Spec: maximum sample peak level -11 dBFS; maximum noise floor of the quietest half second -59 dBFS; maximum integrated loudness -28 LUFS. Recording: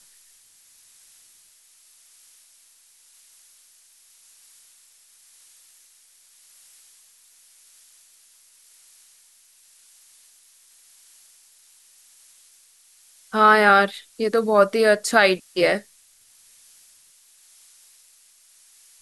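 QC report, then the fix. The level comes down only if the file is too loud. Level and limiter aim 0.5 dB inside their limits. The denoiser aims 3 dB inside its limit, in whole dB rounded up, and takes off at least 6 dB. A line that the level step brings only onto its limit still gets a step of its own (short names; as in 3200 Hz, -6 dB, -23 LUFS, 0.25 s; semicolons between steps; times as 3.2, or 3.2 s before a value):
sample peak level -3.0 dBFS: fail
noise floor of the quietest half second -56 dBFS: fail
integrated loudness -18.5 LUFS: fail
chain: gain -10 dB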